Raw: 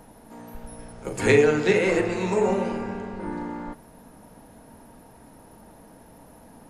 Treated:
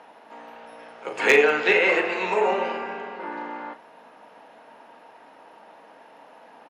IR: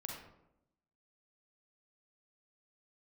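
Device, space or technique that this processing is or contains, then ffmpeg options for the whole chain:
megaphone: -filter_complex "[0:a]highpass=630,lowpass=3200,equalizer=frequency=2800:width_type=o:width=0.48:gain=5,asoftclip=type=hard:threshold=-13.5dB,asplit=2[link_01][link_02];[link_02]adelay=38,volume=-13dB[link_03];[link_01][link_03]amix=inputs=2:normalize=0,volume=6dB"

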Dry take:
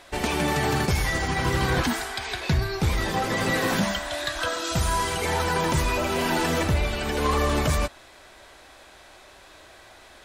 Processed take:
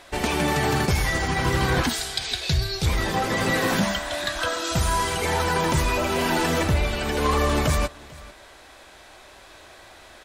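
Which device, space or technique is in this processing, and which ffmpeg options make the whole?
ducked delay: -filter_complex "[0:a]asettb=1/sr,asplit=3[link_01][link_02][link_03];[link_01]atrim=end=1.894[link_04];[link_02]atrim=start=1.89:end=2.86,asetpts=PTS-STARTPTS,afade=type=in:duration=0.004:curve=qsin,afade=type=out:start_time=0.966:duration=0.004:curve=qsin,equalizer=frequency=250:width_type=o:width=1:gain=-10,equalizer=frequency=1000:width_type=o:width=1:gain=-9,equalizer=frequency=2000:width_type=o:width=1:gain=-4,equalizer=frequency=4000:width_type=o:width=1:gain=7,equalizer=frequency=8000:width_type=o:width=1:gain=4[link_05];[link_03]atrim=start=2.856[link_06];[link_04][link_05]acrossfade=duration=0.004:curve1=hsin:curve2=qsin[link_07];[link_07][link_06]acrossfade=duration=0.004:curve1=qsin:curve2=hsin,asplit=3[link_08][link_09][link_10];[link_09]adelay=444,volume=-8dB[link_11];[link_10]apad=whole_len=471553[link_12];[link_11][link_12]sidechaincompress=threshold=-38dB:ratio=8:attack=16:release=1150[link_13];[link_08][link_13]amix=inputs=2:normalize=0,volume=1.5dB"

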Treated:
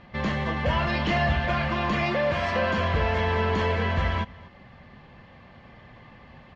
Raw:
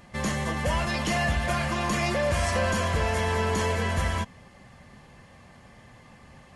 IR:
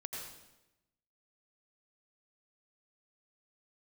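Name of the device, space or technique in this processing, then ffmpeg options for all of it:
ducked delay: -filter_complex "[0:a]asplit=3[link_01][link_02][link_03];[link_02]adelay=239,volume=-4dB[link_04];[link_03]apad=whole_len=299667[link_05];[link_04][link_05]sidechaincompress=threshold=-48dB:ratio=4:attack=16:release=1010[link_06];[link_01][link_06]amix=inputs=2:normalize=0,asettb=1/sr,asplit=3[link_07][link_08][link_09];[link_07]atrim=end=2.034[link_10];[link_08]atrim=start=2.03:end=2.78,asetpts=PTS-STARTPTS,afade=type=in:duration=0.004:curve=qsin,afade=type=out:start_time=0.746:duration=0.004:curve=qsin,highpass=120[link_11];[link_09]atrim=start=2.776[link_12];[link_10][link_11]acrossfade=duration=0.004:curve1=hsin:curve2=qsin[link_13];[link_13][link_12]acrossfade=duration=0.004:curve1=qsin:curve2=hsin,lowpass=frequency=4000:width=0.5412,lowpass=frequency=4000:width=1.3066,asettb=1/sr,asplit=3[link_14][link_15][link_16];[link_14]atrim=end=0.654[link_17];[link_15]atrim=start=0.65:end=1.45,asetpts=PTS-STARTPTS,afade=type=in:duration=0.004:curve=qsin,afade=type=out:start_time=0.796:duration=0.004:curve=qsin,asplit=2[link_18][link_19];[link_19]adelay=26,volume=-6dB[link_20];[link_18][link_20]amix=inputs=2:normalize=0,atrim=end_sample=35280[link_21];[link_16]atrim=start=1.446[link_22];[link_17][link_21]acrossfade=duration=0.004:curve1=hsin:curve2=qsin[link_23];[link_23][link_22]acrossfade=duration=0.004:curve1=qsin:curve2=hsin,volume=1.5dB"

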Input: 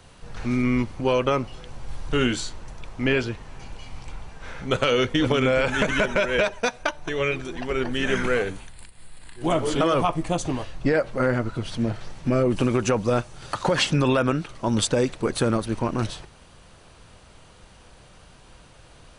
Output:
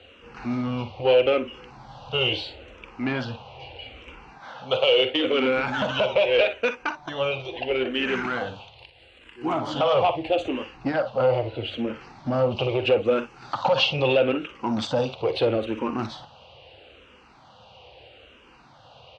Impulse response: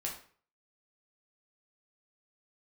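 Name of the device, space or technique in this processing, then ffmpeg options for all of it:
barber-pole phaser into a guitar amplifier: -filter_complex "[0:a]asettb=1/sr,asplit=3[link_01][link_02][link_03];[link_01]atrim=end=4.404[link_04];[link_02]atrim=start=4.4:end=5.33,asetpts=PTS-STARTPTS,afade=type=in:duration=0.004:curve=qsin,afade=type=out:start_time=0.926:duration=0.004:curve=qsin,highpass=frequency=300:poles=1[link_05];[link_03]atrim=start=5.326[link_06];[link_04][link_05]acrossfade=duration=0.004:curve1=hsin:curve2=qsin[link_07];[link_07][link_06]acrossfade=duration=0.004:curve1=qsin:curve2=hsin,highshelf=frequency=7200:gain=10.5,aecho=1:1:46|59:0.211|0.188,asplit=2[link_08][link_09];[link_09]afreqshift=-0.77[link_10];[link_08][link_10]amix=inputs=2:normalize=1,asoftclip=type=tanh:threshold=-19dB,highpass=90,equalizer=frequency=170:width_type=q:width=4:gain=-10,equalizer=frequency=520:width_type=q:width=4:gain=7,equalizer=frequency=790:width_type=q:width=4:gain=7,equalizer=frequency=1800:width_type=q:width=4:gain=-5,equalizer=frequency=2800:width_type=q:width=4:gain=9,lowpass=frequency=4100:width=0.5412,lowpass=frequency=4100:width=1.3066,volume=1.5dB"

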